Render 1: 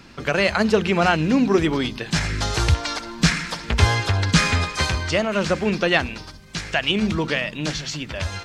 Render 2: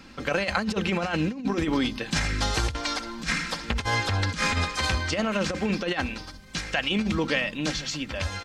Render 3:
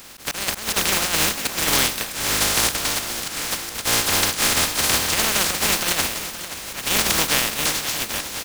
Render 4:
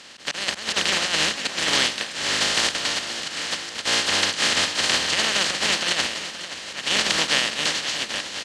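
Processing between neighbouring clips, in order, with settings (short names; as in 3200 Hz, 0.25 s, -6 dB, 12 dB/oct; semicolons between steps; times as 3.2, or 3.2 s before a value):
comb 3.8 ms, depth 41%; negative-ratio compressor -20 dBFS, ratio -0.5; gain -4.5 dB
spectral contrast lowered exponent 0.17; auto swell 0.188 s; on a send: feedback echo 0.526 s, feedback 46%, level -12 dB; on the sum: gain +6 dB
speaker cabinet 110–7800 Hz, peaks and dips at 120 Hz -6 dB, 580 Hz +3 dB, 1800 Hz +6 dB, 3000 Hz +7 dB, 4300 Hz +5 dB; gain -3.5 dB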